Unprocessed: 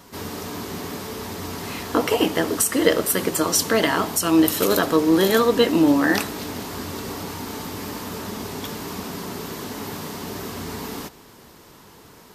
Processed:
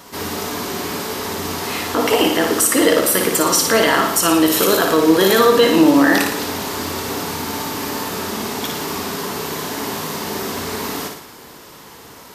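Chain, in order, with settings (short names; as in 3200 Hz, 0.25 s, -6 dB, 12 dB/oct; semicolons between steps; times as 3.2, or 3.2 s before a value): low shelf 240 Hz -8.5 dB; limiter -12.5 dBFS, peak gain reduction 10.5 dB; on a send: flutter echo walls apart 9.8 m, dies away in 0.65 s; on the sum: gain +7.5 dB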